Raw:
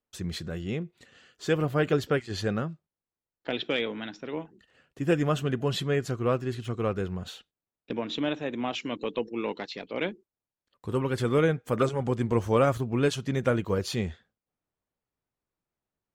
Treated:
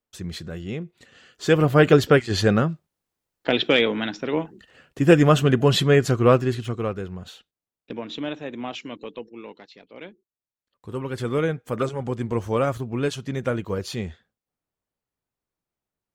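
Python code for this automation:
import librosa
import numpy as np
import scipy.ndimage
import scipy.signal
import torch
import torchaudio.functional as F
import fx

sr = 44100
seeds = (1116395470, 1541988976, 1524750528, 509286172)

y = fx.gain(x, sr, db=fx.line((0.77, 1.0), (1.8, 10.0), (6.37, 10.0), (7.02, -1.0), (8.74, -1.0), (9.6, -10.0), (10.1, -10.0), (11.27, 0.0)))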